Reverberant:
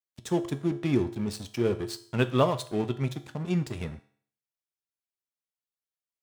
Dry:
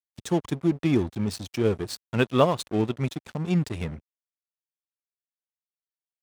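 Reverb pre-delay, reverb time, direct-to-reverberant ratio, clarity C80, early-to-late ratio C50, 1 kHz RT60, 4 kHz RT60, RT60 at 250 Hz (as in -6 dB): 3 ms, 0.55 s, 9.0 dB, 18.5 dB, 15.0 dB, 0.55 s, 0.55 s, 0.55 s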